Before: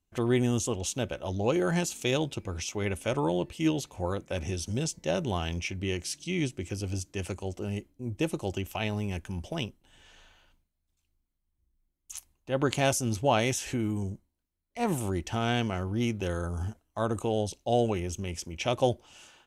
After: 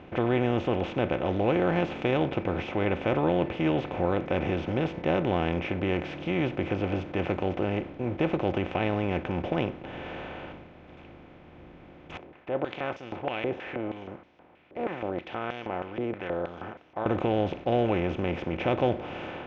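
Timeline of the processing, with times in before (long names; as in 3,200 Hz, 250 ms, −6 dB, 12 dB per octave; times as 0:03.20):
0:12.17–0:17.06: band-pass on a step sequencer 6.3 Hz 410–5,600 Hz
whole clip: compressor on every frequency bin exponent 0.4; low-pass filter 2,700 Hz 24 dB per octave; level −3 dB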